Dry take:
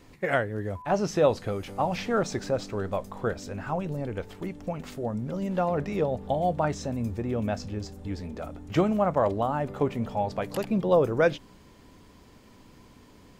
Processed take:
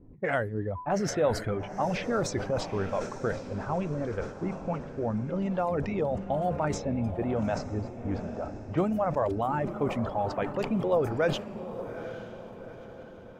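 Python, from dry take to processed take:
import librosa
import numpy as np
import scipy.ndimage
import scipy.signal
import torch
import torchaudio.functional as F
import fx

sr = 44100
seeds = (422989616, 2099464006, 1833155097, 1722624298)

p1 = fx.env_lowpass(x, sr, base_hz=330.0, full_db=-22.0)
p2 = fx.dereverb_blind(p1, sr, rt60_s=1.1)
p3 = fx.dynamic_eq(p2, sr, hz=4100.0, q=1.2, threshold_db=-52.0, ratio=4.0, max_db=-5)
p4 = fx.over_compress(p3, sr, threshold_db=-31.0, ratio=-1.0)
p5 = p3 + F.gain(torch.from_numpy(p4), -1.5).numpy()
p6 = fx.echo_diffused(p5, sr, ms=853, feedback_pct=47, wet_db=-11.0)
p7 = fx.sustainer(p6, sr, db_per_s=100.0)
y = F.gain(torch.from_numpy(p7), -4.5).numpy()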